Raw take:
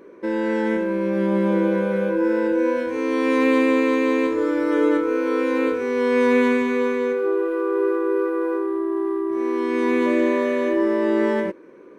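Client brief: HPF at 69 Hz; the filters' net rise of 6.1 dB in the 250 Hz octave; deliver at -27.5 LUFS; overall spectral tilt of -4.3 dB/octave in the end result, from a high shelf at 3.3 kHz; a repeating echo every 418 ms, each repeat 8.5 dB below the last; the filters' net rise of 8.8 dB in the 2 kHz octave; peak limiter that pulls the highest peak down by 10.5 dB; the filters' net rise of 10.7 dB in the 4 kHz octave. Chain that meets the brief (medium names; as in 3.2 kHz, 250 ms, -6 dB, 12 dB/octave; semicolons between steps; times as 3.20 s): high-pass 69 Hz; peaking EQ 250 Hz +7.5 dB; peaking EQ 2 kHz +7.5 dB; treble shelf 3.3 kHz +3.5 dB; peaking EQ 4 kHz +8.5 dB; peak limiter -11.5 dBFS; feedback delay 418 ms, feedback 38%, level -8.5 dB; trim -7.5 dB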